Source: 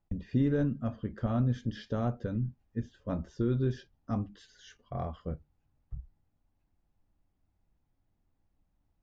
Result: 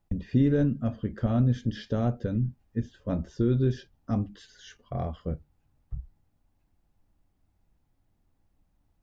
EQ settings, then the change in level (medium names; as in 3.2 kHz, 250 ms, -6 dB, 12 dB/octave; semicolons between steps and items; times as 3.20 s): dynamic bell 1.1 kHz, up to -6 dB, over -52 dBFS, Q 1.4; +5.0 dB